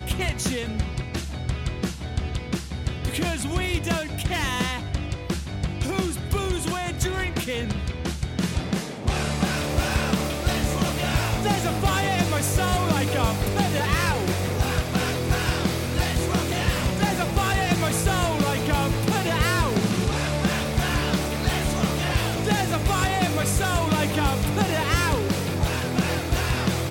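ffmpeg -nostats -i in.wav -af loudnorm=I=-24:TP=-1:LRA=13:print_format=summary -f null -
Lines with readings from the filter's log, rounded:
Input Integrated:    -24.4 LUFS
Input True Peak:     -10.6 dBTP
Input LRA:             4.3 LU
Input Threshold:     -34.4 LUFS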